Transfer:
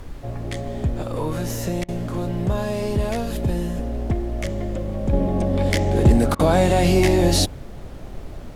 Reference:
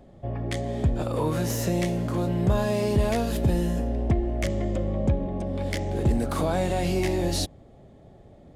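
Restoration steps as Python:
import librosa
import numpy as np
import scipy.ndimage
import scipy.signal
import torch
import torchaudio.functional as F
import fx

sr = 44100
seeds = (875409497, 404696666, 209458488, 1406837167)

y = fx.fix_interpolate(x, sr, at_s=(1.84, 6.35), length_ms=43.0)
y = fx.noise_reduce(y, sr, print_start_s=7.53, print_end_s=8.03, reduce_db=16.0)
y = fx.gain(y, sr, db=fx.steps((0.0, 0.0), (5.13, -8.5)))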